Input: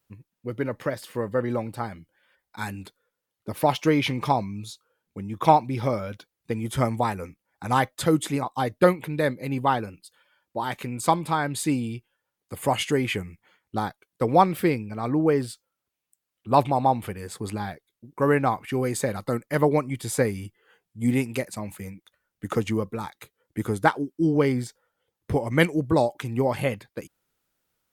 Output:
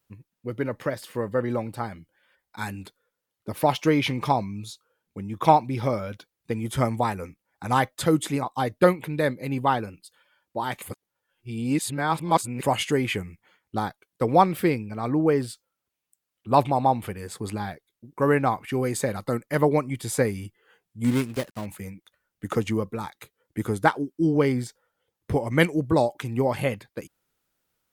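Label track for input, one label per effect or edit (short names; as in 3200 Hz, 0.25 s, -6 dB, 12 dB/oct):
10.820000	12.630000	reverse
21.040000	21.660000	switching dead time of 0.21 ms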